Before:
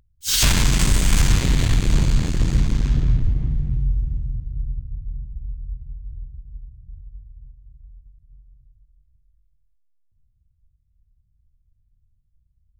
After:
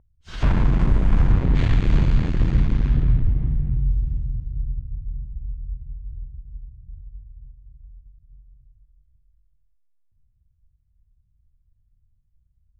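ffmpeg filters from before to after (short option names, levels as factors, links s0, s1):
-af "asetnsamples=n=441:p=0,asendcmd='1.55 lowpass f 2400;3.86 lowpass f 6200;4.6 lowpass f 3200;5.43 lowpass f 1800',lowpass=1100"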